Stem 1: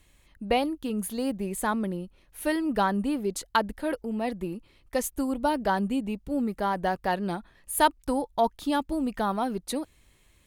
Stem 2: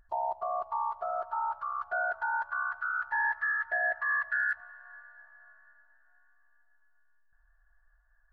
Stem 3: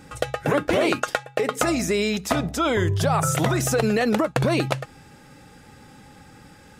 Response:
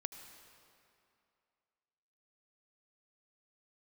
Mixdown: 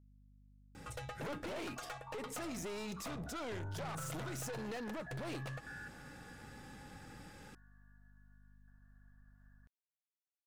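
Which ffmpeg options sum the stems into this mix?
-filter_complex "[1:a]alimiter=level_in=2.37:limit=0.0631:level=0:latency=1,volume=0.422,acompressor=mode=upward:threshold=0.00447:ratio=2.5,adelay=1350,volume=0.299[s0];[2:a]aeval=exprs='(tanh(22.4*val(0)+0.3)-tanh(0.3))/22.4':c=same,adelay=750,volume=0.531[s1];[s0][s1]amix=inputs=2:normalize=0,aeval=exprs='val(0)+0.000794*(sin(2*PI*50*n/s)+sin(2*PI*2*50*n/s)/2+sin(2*PI*3*50*n/s)/3+sin(2*PI*4*50*n/s)/4+sin(2*PI*5*50*n/s)/5)':c=same,alimiter=level_in=4.47:limit=0.0631:level=0:latency=1:release=91,volume=0.224"

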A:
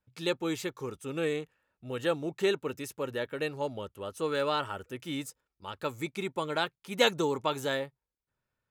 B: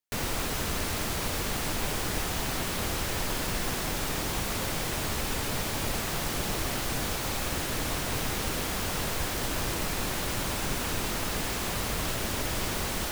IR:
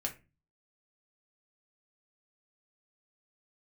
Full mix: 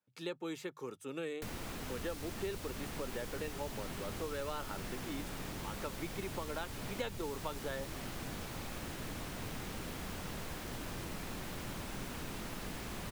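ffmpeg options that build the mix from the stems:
-filter_complex "[0:a]highpass=180,volume=0.596[s0];[1:a]acrossover=split=240|3000[s1][s2][s3];[s2]acompressor=threshold=0.00562:ratio=2.5[s4];[s1][s4][s3]amix=inputs=3:normalize=0,adelay=1300,volume=0.596[s5];[s0][s5]amix=inputs=2:normalize=0,bandreject=f=50:t=h:w=6,bandreject=f=100:t=h:w=6,bandreject=f=150:t=h:w=6,acrossover=split=150|2500[s6][s7][s8];[s6]acompressor=threshold=0.00562:ratio=4[s9];[s7]acompressor=threshold=0.0126:ratio=4[s10];[s8]acompressor=threshold=0.00251:ratio=4[s11];[s9][s10][s11]amix=inputs=3:normalize=0"

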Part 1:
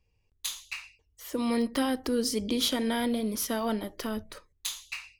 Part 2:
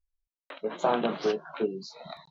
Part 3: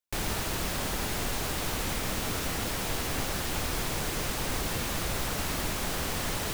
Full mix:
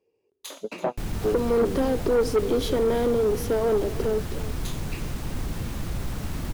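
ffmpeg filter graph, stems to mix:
-filter_complex "[0:a]highpass=f=400:t=q:w=4.9,volume=1.12,asplit=3[s0][s1][s2];[s1]volume=0.141[s3];[1:a]volume=1[s4];[2:a]equalizer=f=520:w=0.83:g=-6,adelay=850,volume=0.841[s5];[s2]apad=whole_len=101754[s6];[s4][s6]sidechaingate=range=0.0112:threshold=0.00501:ratio=16:detection=peak[s7];[s3]aecho=0:1:334:1[s8];[s0][s7][s5][s8]amix=inputs=4:normalize=0,tiltshelf=f=760:g=7.5,asoftclip=type=tanh:threshold=0.158"

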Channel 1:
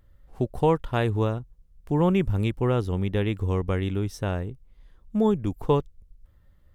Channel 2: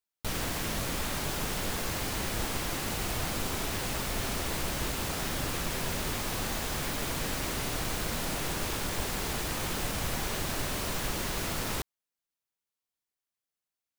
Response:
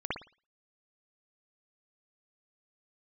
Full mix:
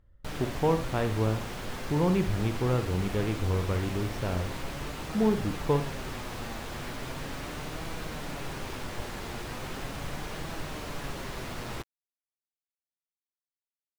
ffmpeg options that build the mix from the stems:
-filter_complex "[0:a]volume=0.531,asplit=2[s0][s1];[s1]volume=0.211[s2];[1:a]flanger=delay=6:depth=2.8:regen=65:speed=0.38:shape=triangular,acrusher=bits=6:mix=0:aa=0.000001,volume=1.19[s3];[2:a]atrim=start_sample=2205[s4];[s2][s4]afir=irnorm=-1:irlink=0[s5];[s0][s3][s5]amix=inputs=3:normalize=0,lowpass=f=2600:p=1"

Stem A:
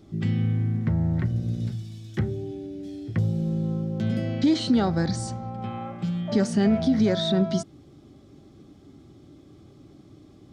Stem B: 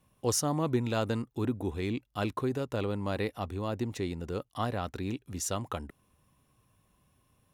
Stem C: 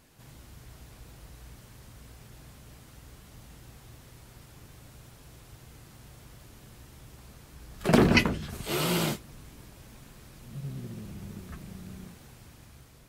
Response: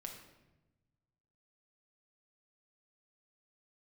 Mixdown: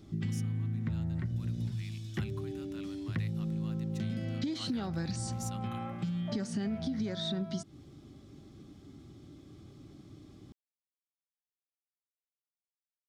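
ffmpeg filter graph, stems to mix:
-filter_complex "[0:a]acompressor=threshold=0.0316:ratio=5,volume=0.944[s0];[1:a]highpass=1400,volume=0.355,afade=t=in:st=1.16:d=0.21:silence=0.316228[s1];[s0][s1]amix=inputs=2:normalize=0,equalizer=f=570:w=0.71:g=-5.5"

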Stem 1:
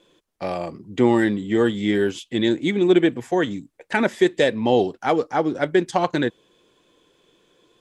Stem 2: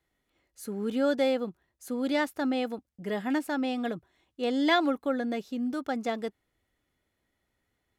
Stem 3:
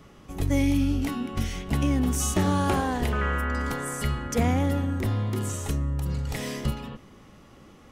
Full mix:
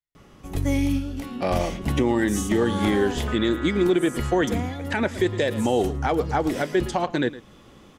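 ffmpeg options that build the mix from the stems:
-filter_complex "[0:a]adelay=1000,volume=1.33,asplit=2[s0][s1];[s1]volume=0.119[s2];[1:a]equalizer=f=430:w=0.36:g=-11,aecho=1:1:7.1:0.57,volume=0.15,asplit=2[s3][s4];[2:a]adelay=150,volume=1.06,asplit=2[s5][s6];[s6]volume=0.0631[s7];[s4]apad=whole_len=355857[s8];[s5][s8]sidechaincompress=threshold=0.00282:ratio=8:attack=29:release=287[s9];[s2][s7]amix=inputs=2:normalize=0,aecho=0:1:111:1[s10];[s0][s3][s9][s10]amix=inputs=4:normalize=0,alimiter=limit=0.266:level=0:latency=1:release=291"

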